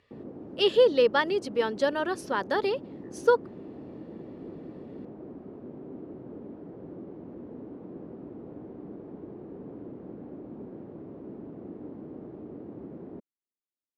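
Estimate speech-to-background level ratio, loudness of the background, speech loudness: 17.0 dB, −43.0 LKFS, −26.0 LKFS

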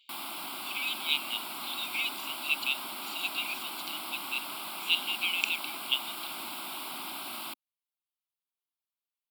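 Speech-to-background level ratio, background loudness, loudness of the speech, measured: 4.5 dB, −37.0 LKFS, −32.5 LKFS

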